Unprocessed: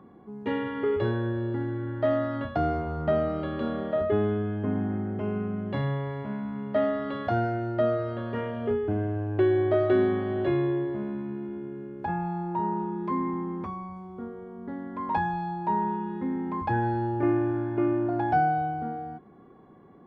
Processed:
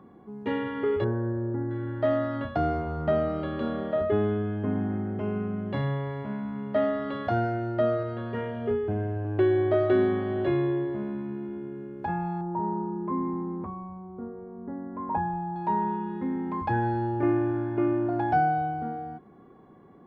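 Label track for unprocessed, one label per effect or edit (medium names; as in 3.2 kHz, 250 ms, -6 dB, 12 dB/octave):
1.040000	1.710000	Gaussian low-pass sigma 5.3 samples
8.030000	9.250000	comb of notches 290 Hz
12.410000	15.560000	low-pass 1.1 kHz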